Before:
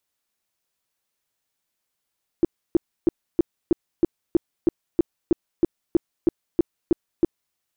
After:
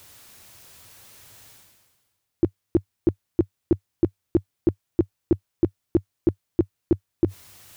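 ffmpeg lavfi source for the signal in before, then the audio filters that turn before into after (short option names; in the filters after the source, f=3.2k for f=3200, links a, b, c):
-f lavfi -i "aevalsrc='0.251*sin(2*PI*338*mod(t,0.32))*lt(mod(t,0.32),6/338)':d=5.12:s=44100"
-af "equalizer=f=97:t=o:w=0.81:g=14,areverse,acompressor=mode=upward:threshold=-25dB:ratio=2.5,areverse"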